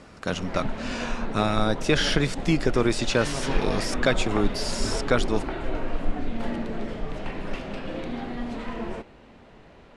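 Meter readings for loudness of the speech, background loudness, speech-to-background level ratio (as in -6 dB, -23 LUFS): -26.5 LUFS, -32.5 LUFS, 6.0 dB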